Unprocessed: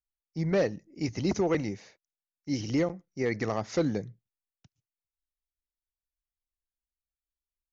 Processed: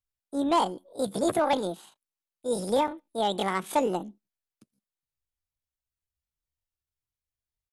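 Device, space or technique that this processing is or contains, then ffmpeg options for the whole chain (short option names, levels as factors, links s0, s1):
chipmunk voice: -af "asetrate=76340,aresample=44100,atempo=0.577676,volume=1.33"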